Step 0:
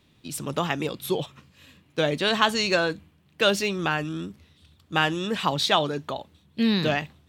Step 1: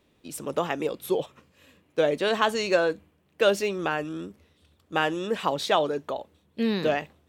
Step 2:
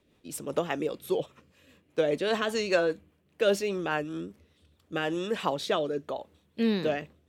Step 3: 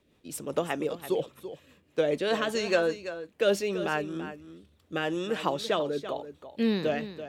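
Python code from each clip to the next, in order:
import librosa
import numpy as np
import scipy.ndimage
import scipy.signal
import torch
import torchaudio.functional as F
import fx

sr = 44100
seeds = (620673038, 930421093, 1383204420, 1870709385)

y1 = fx.graphic_eq(x, sr, hz=(125, 500, 4000), db=(-8, 7, -5))
y1 = y1 * librosa.db_to_amplitude(-3.0)
y2 = fx.rotary_switch(y1, sr, hz=5.0, then_hz=0.8, switch_at_s=4.4)
y3 = y2 + 10.0 ** (-12.0 / 20.0) * np.pad(y2, (int(335 * sr / 1000.0), 0))[:len(y2)]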